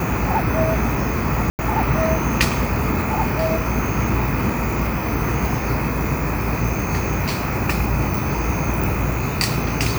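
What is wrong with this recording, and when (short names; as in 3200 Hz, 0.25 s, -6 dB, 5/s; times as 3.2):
1.5–1.59 gap 89 ms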